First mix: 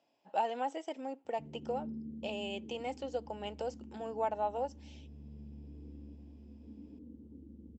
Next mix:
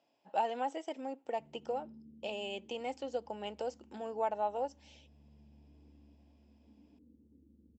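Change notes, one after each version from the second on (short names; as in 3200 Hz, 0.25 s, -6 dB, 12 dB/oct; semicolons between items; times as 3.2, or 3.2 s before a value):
background -11.5 dB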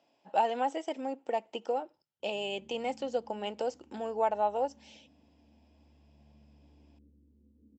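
speech +5.0 dB; background: entry +0.95 s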